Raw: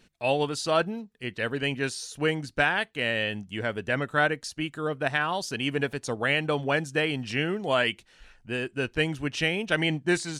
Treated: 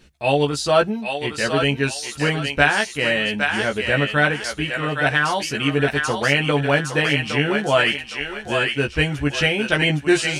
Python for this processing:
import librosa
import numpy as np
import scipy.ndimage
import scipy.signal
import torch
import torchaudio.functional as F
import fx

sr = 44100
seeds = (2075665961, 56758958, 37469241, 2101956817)

y = fx.peak_eq(x, sr, hz=64.0, db=13.5, octaves=0.67)
y = fx.doubler(y, sr, ms=14.0, db=-3.5)
y = fx.echo_thinned(y, sr, ms=813, feedback_pct=44, hz=940.0, wet_db=-3)
y = y * librosa.db_to_amplitude(5.0)